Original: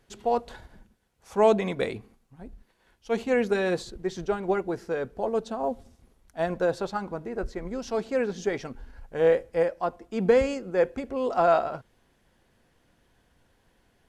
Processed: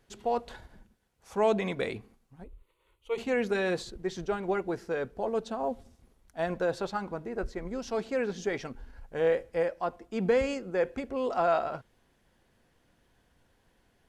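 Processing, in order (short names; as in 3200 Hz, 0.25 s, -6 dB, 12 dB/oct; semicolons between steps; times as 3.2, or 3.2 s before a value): dynamic EQ 2400 Hz, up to +3 dB, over -42 dBFS, Q 0.73; in parallel at -1 dB: limiter -20.5 dBFS, peak gain reduction 12.5 dB; 2.44–3.18 on the sum: fixed phaser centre 1100 Hz, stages 8; gain -8 dB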